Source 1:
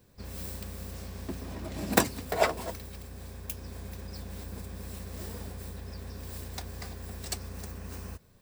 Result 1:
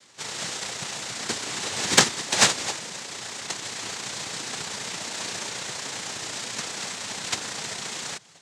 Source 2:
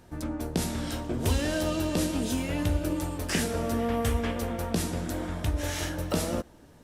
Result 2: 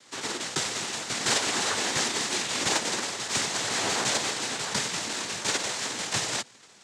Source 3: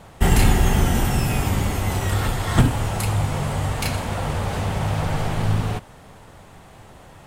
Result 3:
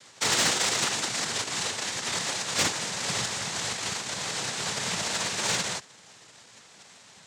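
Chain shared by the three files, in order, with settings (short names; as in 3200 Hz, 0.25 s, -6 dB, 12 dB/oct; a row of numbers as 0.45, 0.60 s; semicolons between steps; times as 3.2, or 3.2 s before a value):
spectral whitening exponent 0.1; noise vocoder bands 6; soft clip -12 dBFS; match loudness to -27 LUFS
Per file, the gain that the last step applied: +11.5, +3.0, -4.0 dB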